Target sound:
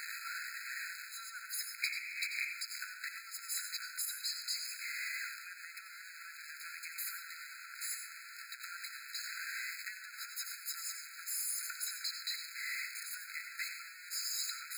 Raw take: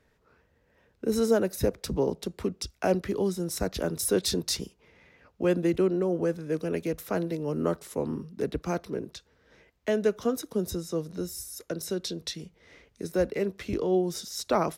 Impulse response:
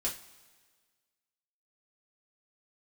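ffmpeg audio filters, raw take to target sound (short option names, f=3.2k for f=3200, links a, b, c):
-filter_complex "[0:a]aeval=exprs='val(0)+0.5*0.0447*sgn(val(0))':c=same,alimiter=limit=-20.5dB:level=0:latency=1:release=128,asettb=1/sr,asplit=3[a][b][c];[a]atrim=end=1.824[d];[b]atrim=start=1.82:end=2.52,asetpts=PTS-STARTPTS,afade=t=in:d=0.004:c=qsin,afade=t=out:st=0.696:d=0.004:c=qsin,highpass=f=2.3k:t=q:w=7.8[e];[c]atrim=start=2.516[f];[d][e]acrossfade=d=0.004:c1=hsin:c2=qsin[g];[g][f]acrossfade=d=0.004:c1=qsin:c2=hsin,asplit=2[h][i];[1:a]atrim=start_sample=2205,adelay=85[j];[i][j]afir=irnorm=-1:irlink=0,volume=-10dB[k];[h][k]amix=inputs=2:normalize=0,afftfilt=real='re*eq(mod(floor(b*sr/1024/1300),2),1)':imag='im*eq(mod(floor(b*sr/1024/1300),2),1)':win_size=1024:overlap=0.75,volume=-5dB"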